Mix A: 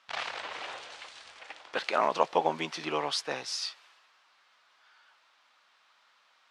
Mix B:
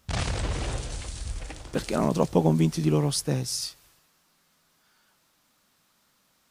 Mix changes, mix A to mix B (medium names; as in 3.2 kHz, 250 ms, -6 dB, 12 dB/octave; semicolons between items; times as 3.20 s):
speech -6.0 dB; master: remove Butterworth band-pass 1.7 kHz, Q 0.57